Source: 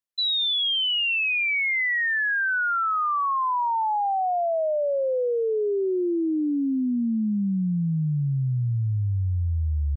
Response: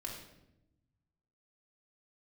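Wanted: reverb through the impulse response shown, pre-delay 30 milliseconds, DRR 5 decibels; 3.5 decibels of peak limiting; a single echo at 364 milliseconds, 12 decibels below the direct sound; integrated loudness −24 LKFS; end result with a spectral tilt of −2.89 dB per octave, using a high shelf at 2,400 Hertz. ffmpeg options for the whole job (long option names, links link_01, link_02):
-filter_complex "[0:a]highshelf=frequency=2400:gain=9,alimiter=limit=-18dB:level=0:latency=1,aecho=1:1:364:0.251,asplit=2[link_01][link_02];[1:a]atrim=start_sample=2205,adelay=30[link_03];[link_02][link_03]afir=irnorm=-1:irlink=0,volume=-4dB[link_04];[link_01][link_04]amix=inputs=2:normalize=0,volume=-4dB"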